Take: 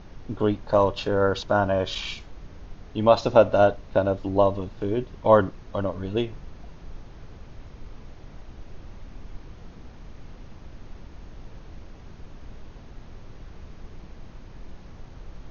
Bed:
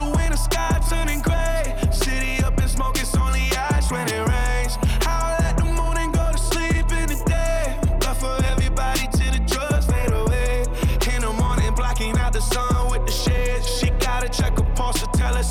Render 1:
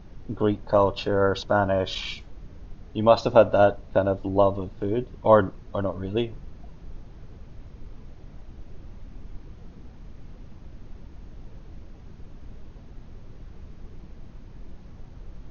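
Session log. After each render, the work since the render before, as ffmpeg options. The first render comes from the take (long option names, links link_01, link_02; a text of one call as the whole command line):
ffmpeg -i in.wav -af "afftdn=noise_reduction=6:noise_floor=-45" out.wav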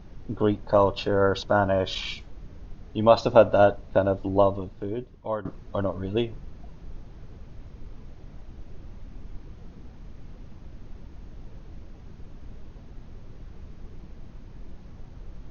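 ffmpeg -i in.wav -filter_complex "[0:a]asplit=2[link_01][link_02];[link_01]atrim=end=5.45,asetpts=PTS-STARTPTS,afade=type=out:start_time=4.36:duration=1.09:silence=0.125893[link_03];[link_02]atrim=start=5.45,asetpts=PTS-STARTPTS,afade=type=in:duration=0.004:curve=hsin:silence=0.125893[link_04];[link_03][link_04]concat=n=2:v=0:a=1" out.wav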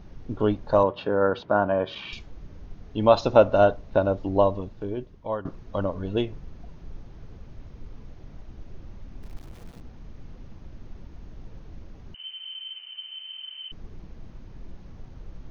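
ffmpeg -i in.wav -filter_complex "[0:a]asettb=1/sr,asplit=3[link_01][link_02][link_03];[link_01]atrim=end=0.834[link_04];[link_02]atrim=start=0.83:end=2.13,asetpts=PTS-STARTPTS,afade=type=in:duration=0.004:curve=qsin,afade=type=out:start_time=1.296:duration=0.004:curve=qsin,highpass=140,lowpass=2400[link_05];[link_03]atrim=start=2.126[link_06];[link_04][link_05]acrossfade=duration=0.004:curve1=hsin:curve2=qsin[link_07];[link_07][link_06]acrossfade=duration=0.004:curve1=qsin:curve2=hsin,asplit=3[link_08][link_09][link_10];[link_08]afade=type=out:start_time=9.22:duration=0.02[link_11];[link_09]aeval=exprs='val(0)*gte(abs(val(0)),0.00596)':channel_layout=same,afade=type=in:start_time=9.22:duration=0.02,afade=type=out:start_time=9.8:duration=0.02[link_12];[link_10]afade=type=in:start_time=9.8:duration=0.02[link_13];[link_11][link_12][link_13]amix=inputs=3:normalize=0,asettb=1/sr,asplit=3[link_14][link_15][link_16];[link_14]atrim=end=12.144[link_17];[link_15]atrim=start=12.14:end=13.72,asetpts=PTS-STARTPTS,afade=type=in:duration=0.004:curve=qsin,afade=type=out:start_time=1.576:duration=0.004:curve=qsin,lowpass=frequency=2600:width_type=q:width=0.5098,lowpass=frequency=2600:width_type=q:width=0.6013,lowpass=frequency=2600:width_type=q:width=0.9,lowpass=frequency=2600:width_type=q:width=2.563,afreqshift=-3100[link_18];[link_16]atrim=start=13.716[link_19];[link_17][link_18]acrossfade=duration=0.004:curve1=hsin:curve2=qsin[link_20];[link_20][link_19]acrossfade=duration=0.004:curve1=qsin:curve2=hsin" out.wav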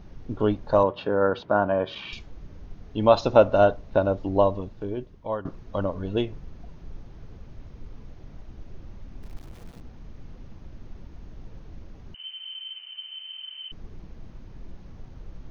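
ffmpeg -i in.wav -filter_complex "[0:a]asettb=1/sr,asplit=3[link_01][link_02][link_03];[link_01]atrim=end=12.194[link_04];[link_02]atrim=start=12.19:end=13.53,asetpts=PTS-STARTPTS,afade=type=in:duration=0.004:curve=qsin,afade=type=out:start_time=1.336:duration=0.004:curve=qsin,highpass=390[link_05];[link_03]atrim=start=13.526[link_06];[link_04][link_05]acrossfade=duration=0.004:curve1=hsin:curve2=qsin[link_07];[link_07][link_06]acrossfade=duration=0.004:curve1=qsin:curve2=hsin" out.wav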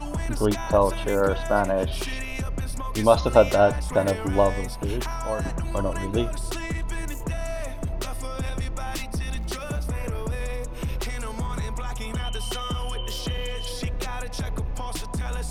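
ffmpeg -i in.wav -i bed.wav -filter_complex "[1:a]volume=-9.5dB[link_01];[0:a][link_01]amix=inputs=2:normalize=0" out.wav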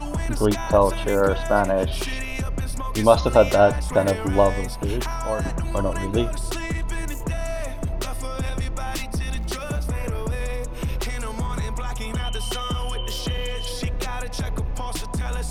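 ffmpeg -i in.wav -af "volume=2.5dB,alimiter=limit=-2dB:level=0:latency=1" out.wav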